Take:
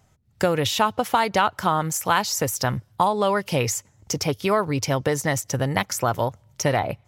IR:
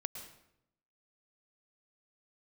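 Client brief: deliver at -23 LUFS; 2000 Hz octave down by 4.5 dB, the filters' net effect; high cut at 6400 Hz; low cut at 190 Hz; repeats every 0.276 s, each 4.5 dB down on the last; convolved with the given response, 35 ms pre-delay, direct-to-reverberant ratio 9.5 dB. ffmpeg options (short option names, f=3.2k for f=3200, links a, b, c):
-filter_complex "[0:a]highpass=190,lowpass=6.4k,equalizer=f=2k:t=o:g=-6,aecho=1:1:276|552|828|1104|1380|1656|1932|2208|2484:0.596|0.357|0.214|0.129|0.0772|0.0463|0.0278|0.0167|0.01,asplit=2[a][b];[1:a]atrim=start_sample=2205,adelay=35[c];[b][c]afir=irnorm=-1:irlink=0,volume=-8.5dB[d];[a][d]amix=inputs=2:normalize=0"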